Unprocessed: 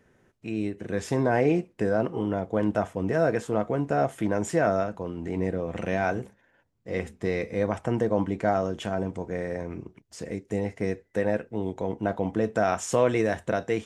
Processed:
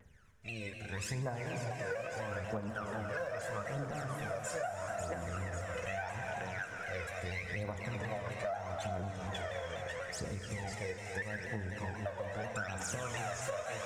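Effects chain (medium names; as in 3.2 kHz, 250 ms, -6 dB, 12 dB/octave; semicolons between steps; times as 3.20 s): thinning echo 544 ms, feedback 52%, high-pass 550 Hz, level -4 dB; phaser 0.78 Hz, delay 2 ms, feedback 78%; peaking EQ 300 Hz -15 dB 1.8 oct; gated-style reverb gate 460 ms flat, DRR 3.5 dB; compression, threshold -33 dBFS, peak gain reduction 16.5 dB; vibrato with a chosen wave saw down 4.1 Hz, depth 100 cents; trim -3 dB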